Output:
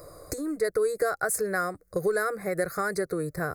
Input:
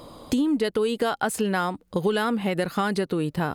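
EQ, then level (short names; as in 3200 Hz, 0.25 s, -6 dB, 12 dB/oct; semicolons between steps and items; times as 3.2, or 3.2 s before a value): Butterworth band-stop 2900 Hz, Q 1.9; high shelf 6400 Hz +7 dB; fixed phaser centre 900 Hz, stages 6; 0.0 dB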